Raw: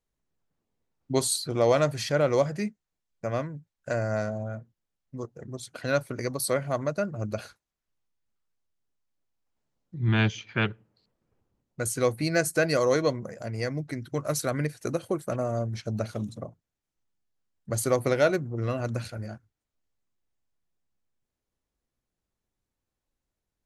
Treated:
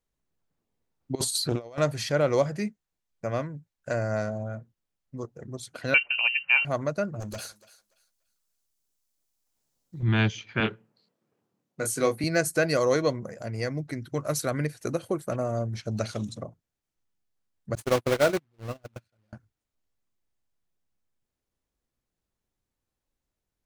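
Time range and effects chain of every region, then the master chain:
1.15–1.78 s: compressor with a negative ratio -30 dBFS, ratio -0.5 + loudspeaker Doppler distortion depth 0.14 ms
5.94–6.65 s: bass shelf 470 Hz +9.5 dB + band-stop 260 Hz, Q 8.2 + frequency inversion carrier 2.9 kHz
7.20–10.03 s: tone controls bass -2 dB, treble +14 dB + hard clipper -32.5 dBFS + thinning echo 289 ms, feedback 25%, high-pass 580 Hz, level -17.5 dB
10.60–12.24 s: high-pass 140 Hz 24 dB/octave + doubling 27 ms -5.5 dB
15.91–16.43 s: low-pass 7.5 kHz + treble shelf 2.3 kHz +11 dB
17.75–19.33 s: block-companded coder 3-bit + gate -27 dBFS, range -36 dB + treble shelf 5.9 kHz -7.5 dB
whole clip: none

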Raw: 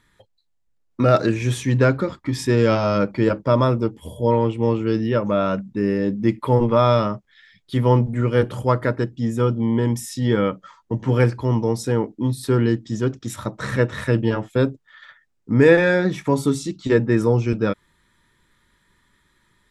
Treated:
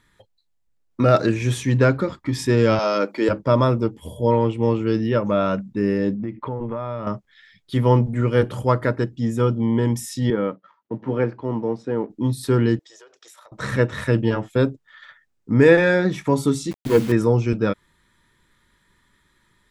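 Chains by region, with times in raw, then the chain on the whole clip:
2.79–3.29 s: high-pass 260 Hz 24 dB/octave + treble shelf 4.2 kHz +7 dB
6.14–7.07 s: compression, threshold -24 dBFS + low-pass 2.1 kHz
10.30–12.10 s: companding laws mixed up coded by A + high-pass 200 Hz + tape spacing loss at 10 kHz 34 dB
12.79–13.52 s: inverse Chebyshev high-pass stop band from 250 Hz + compression 16:1, threshold -44 dBFS
16.71–17.12 s: median filter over 41 samples + rippled EQ curve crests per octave 1.8, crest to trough 9 dB + word length cut 6-bit, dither none
whole clip: none

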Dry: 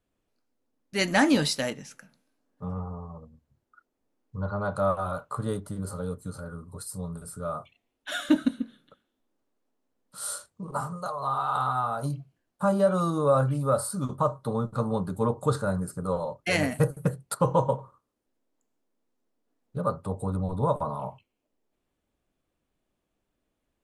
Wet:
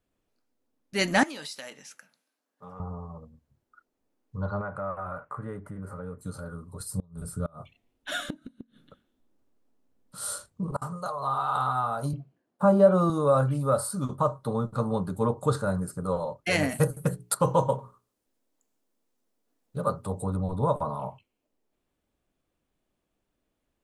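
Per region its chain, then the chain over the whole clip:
1.23–2.80 s: high-pass 960 Hz 6 dB/octave + compression 4:1, threshold -37 dBFS
4.61–6.21 s: compression 2:1, threshold -38 dBFS + resonant high shelf 2.8 kHz -12 dB, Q 3
6.80–10.82 s: bass shelf 250 Hz +10.5 dB + inverted gate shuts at -18 dBFS, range -29 dB
12.13–13.10 s: median filter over 3 samples + high-pass 180 Hz + tilt shelf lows +6.5 dB, about 1.4 kHz
16.69–20.24 s: treble shelf 3.8 kHz +7 dB + hum notches 60/120/180/240/300/360/420 Hz
whole clip: none

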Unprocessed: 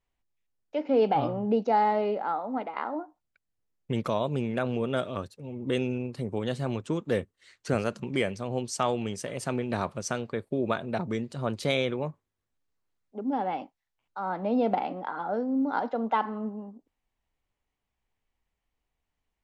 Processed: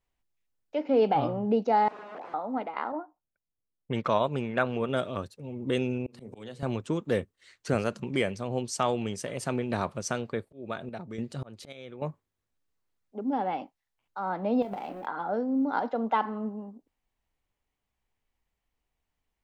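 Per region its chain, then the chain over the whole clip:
1.88–2.34 s: integer overflow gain 31.5 dB + Butterworth band-pass 550 Hz, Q 0.63
2.92–4.89 s: level-controlled noise filter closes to 530 Hz, open at -23 dBFS + peaking EQ 1.4 kHz +7.5 dB 2.1 oct + upward expansion, over -35 dBFS
6.06–6.63 s: hum notches 60/120/180/240/300/360/420/480/540/600 Hz + slow attack 602 ms + three bands compressed up and down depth 100%
10.35–12.03 s: band-stop 1 kHz + slow attack 428 ms + square tremolo 1.2 Hz, depth 65%, duty 65%
14.62–15.07 s: companding laws mixed up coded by A + compression, threshold -32 dBFS + doubling 25 ms -8 dB
whole clip: none

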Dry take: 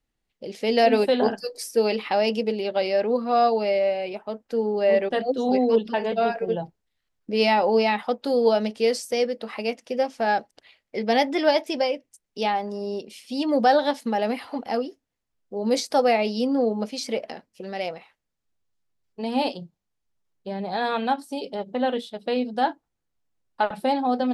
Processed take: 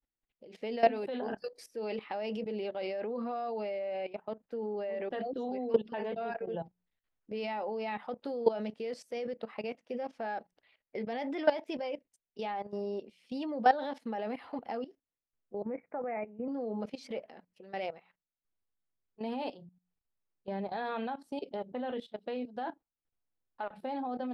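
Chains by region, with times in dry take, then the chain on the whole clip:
15.62–16.48 s: steep low-pass 2.4 kHz 96 dB/octave + level held to a coarse grid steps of 12 dB
whole clip: tone controls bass -2 dB, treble -14 dB; hum notches 60/120/180 Hz; level held to a coarse grid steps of 16 dB; trim -3.5 dB

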